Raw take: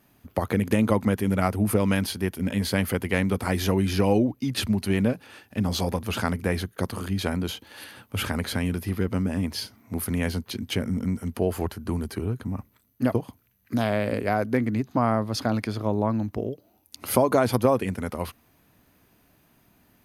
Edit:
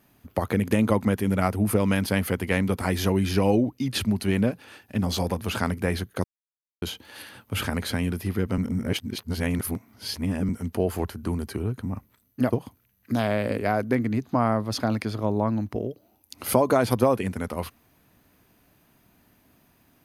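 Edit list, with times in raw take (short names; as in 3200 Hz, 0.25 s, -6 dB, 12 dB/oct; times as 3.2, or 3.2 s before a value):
2.09–2.71 cut
6.86–7.44 mute
9.2–11.11 reverse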